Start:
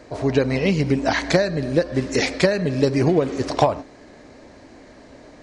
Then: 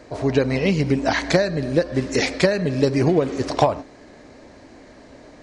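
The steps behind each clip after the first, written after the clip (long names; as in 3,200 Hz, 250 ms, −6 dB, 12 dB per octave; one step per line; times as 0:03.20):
no processing that can be heard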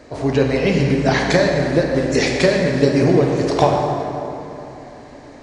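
dense smooth reverb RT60 3.2 s, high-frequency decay 0.55×, DRR 0 dB
level +1 dB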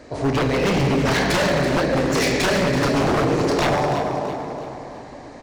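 wave folding −14 dBFS
on a send: echo with shifted repeats 332 ms, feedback 43%, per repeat +51 Hz, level −11 dB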